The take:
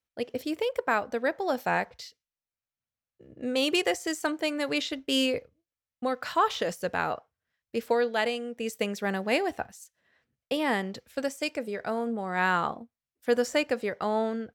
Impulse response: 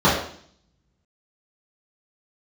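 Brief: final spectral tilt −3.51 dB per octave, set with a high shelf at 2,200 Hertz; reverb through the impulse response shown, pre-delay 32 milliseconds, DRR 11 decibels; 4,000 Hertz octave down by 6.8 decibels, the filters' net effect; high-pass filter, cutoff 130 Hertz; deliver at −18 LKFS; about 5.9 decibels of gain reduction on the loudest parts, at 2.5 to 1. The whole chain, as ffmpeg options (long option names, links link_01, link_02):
-filter_complex "[0:a]highpass=130,highshelf=frequency=2200:gain=-4.5,equalizer=frequency=4000:width_type=o:gain=-5.5,acompressor=threshold=-29dB:ratio=2.5,asplit=2[link_01][link_02];[1:a]atrim=start_sample=2205,adelay=32[link_03];[link_02][link_03]afir=irnorm=-1:irlink=0,volume=-34dB[link_04];[link_01][link_04]amix=inputs=2:normalize=0,volume=15.5dB"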